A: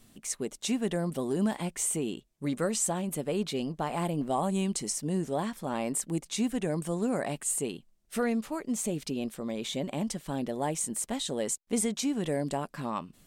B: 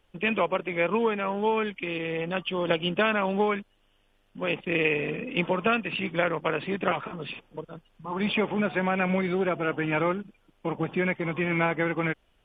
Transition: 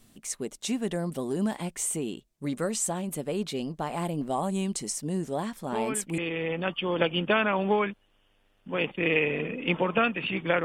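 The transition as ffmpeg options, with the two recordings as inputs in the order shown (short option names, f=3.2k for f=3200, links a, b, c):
-filter_complex "[1:a]asplit=2[a][b];[0:a]apad=whole_dur=10.64,atrim=end=10.64,atrim=end=6.182[c];[b]atrim=start=1.868:end=6.33[d];[a]atrim=start=1.41:end=1.87,asetpts=PTS-STARTPTS,volume=-7dB,afade=t=in:d=0.004:c=hsin,afade=t=out:st=0.456:d=0.004:c=hsin,adelay=5720[e];[c][d]acrossfade=d=0.004:c1=hsin:c2=hsin[f];[f][e]amix=inputs=2:normalize=0"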